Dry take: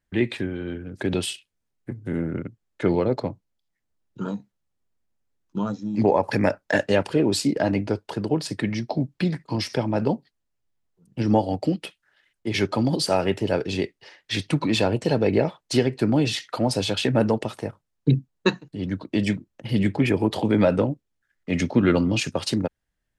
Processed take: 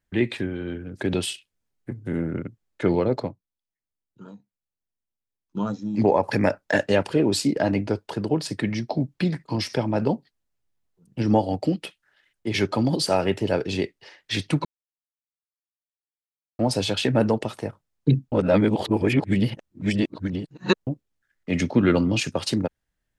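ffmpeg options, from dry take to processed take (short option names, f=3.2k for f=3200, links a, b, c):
-filter_complex "[0:a]asplit=7[a][b][c][d][e][f][g];[a]atrim=end=3.36,asetpts=PTS-STARTPTS,afade=t=out:st=3.23:d=0.13:silence=0.199526[h];[b]atrim=start=3.36:end=5.48,asetpts=PTS-STARTPTS,volume=-14dB[i];[c]atrim=start=5.48:end=14.65,asetpts=PTS-STARTPTS,afade=t=in:d=0.13:silence=0.199526,afade=t=out:st=9.166:d=0.004:c=hsin[j];[d]atrim=start=14.65:end=16.59,asetpts=PTS-STARTPTS,volume=0[k];[e]atrim=start=16.59:end=18.322,asetpts=PTS-STARTPTS,afade=t=in:d=0.004:c=hsin[l];[f]atrim=start=18.318:end=20.872,asetpts=PTS-STARTPTS,areverse[m];[g]atrim=start=20.868[n];[h][i][j][k][l]concat=n=5:v=0:a=1[o];[o][m]acrossfade=d=0.004:c1=hsin:c2=hsin[p];[p][n]acrossfade=d=0.004:c1=hsin:c2=hsin"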